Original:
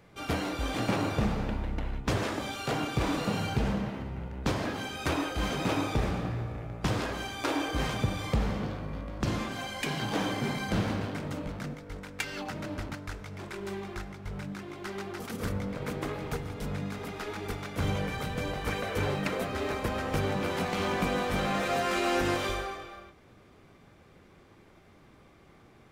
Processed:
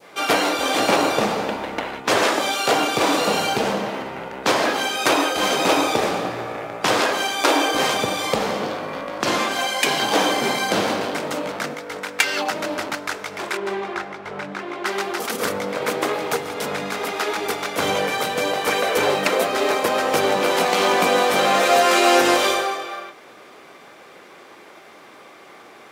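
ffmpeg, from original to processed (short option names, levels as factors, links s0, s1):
-filter_complex "[0:a]asettb=1/sr,asplit=3[s0][s1][s2];[s0]atrim=end=13.574[s3];[s1]atrim=start=13.57:end=14.86,asetpts=PTS-STARTPTS,afade=t=in:d=0.004:c=qsin,afade=t=out:st=1.286:d=0.004:c=qsin,aemphasis=mode=reproduction:type=75kf[s4];[s2]atrim=start=14.856[s5];[s3][s4]acrossfade=d=0.004:c1=hsin:c2=qsin[s6];[s6][s5]acrossfade=d=0.004:c1=qsin:c2=hsin,highpass=470,adynamicequalizer=threshold=0.00501:dfrequency=1700:dqfactor=0.71:tfrequency=1700:tqfactor=0.71:attack=5:release=100:ratio=0.375:range=2.5:mode=cutabove:tftype=bell,alimiter=level_in=7.94:limit=0.891:release=50:level=0:latency=1,volume=0.891"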